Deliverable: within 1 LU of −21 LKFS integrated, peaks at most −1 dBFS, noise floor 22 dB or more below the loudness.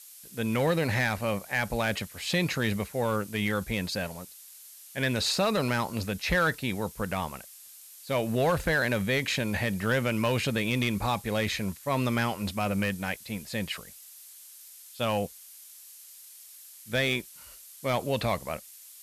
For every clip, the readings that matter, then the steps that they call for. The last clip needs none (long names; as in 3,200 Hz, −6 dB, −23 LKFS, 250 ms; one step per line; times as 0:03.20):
share of clipped samples 0.3%; peaks flattened at −18.5 dBFS; background noise floor −50 dBFS; target noise floor −51 dBFS; integrated loudness −29.0 LKFS; sample peak −18.5 dBFS; target loudness −21.0 LKFS
→ clipped peaks rebuilt −18.5 dBFS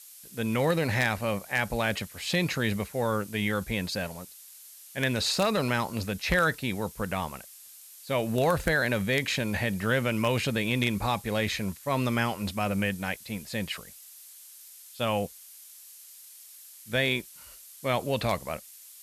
share of clipped samples 0.0%; background noise floor −50 dBFS; target noise floor −51 dBFS
→ broadband denoise 6 dB, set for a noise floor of −50 dBFS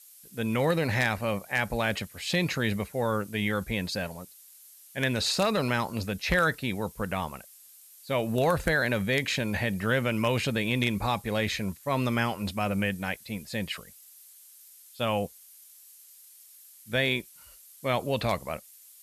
background noise floor −53 dBFS; integrated loudness −28.5 LKFS; sample peak −9.5 dBFS; target loudness −21.0 LKFS
→ level +7.5 dB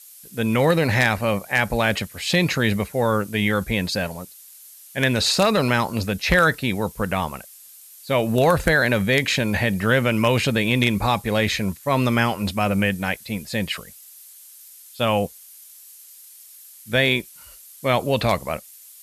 integrated loudness −21.0 LKFS; sample peak −2.0 dBFS; background noise floor −46 dBFS